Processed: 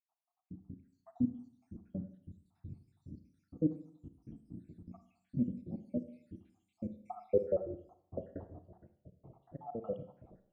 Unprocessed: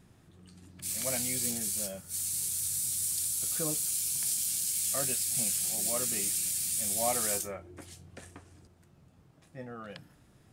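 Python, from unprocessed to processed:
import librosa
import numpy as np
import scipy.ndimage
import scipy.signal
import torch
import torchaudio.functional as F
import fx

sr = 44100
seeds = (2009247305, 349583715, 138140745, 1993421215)

y = fx.spec_dropout(x, sr, seeds[0], share_pct=82)
y = fx.filter_sweep_lowpass(y, sr, from_hz=280.0, to_hz=690.0, start_s=6.51, end_s=8.11, q=3.4)
y = fx.rev_schroeder(y, sr, rt60_s=0.62, comb_ms=33, drr_db=9.5)
y = y * librosa.db_to_amplitude(5.5)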